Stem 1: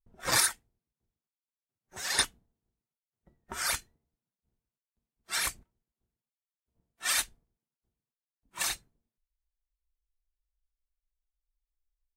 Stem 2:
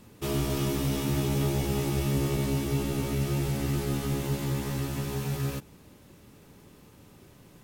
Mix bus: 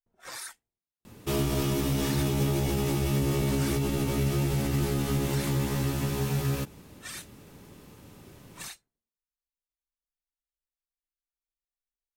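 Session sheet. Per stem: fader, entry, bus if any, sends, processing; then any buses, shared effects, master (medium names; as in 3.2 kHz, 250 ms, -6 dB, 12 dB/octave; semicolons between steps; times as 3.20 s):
-7.5 dB, 0.00 s, no send, bass shelf 240 Hz -11.5 dB; peak limiter -22.5 dBFS, peak gain reduction 10.5 dB
+3.0 dB, 1.05 s, no send, peak limiter -21.5 dBFS, peak gain reduction 5.5 dB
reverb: none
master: none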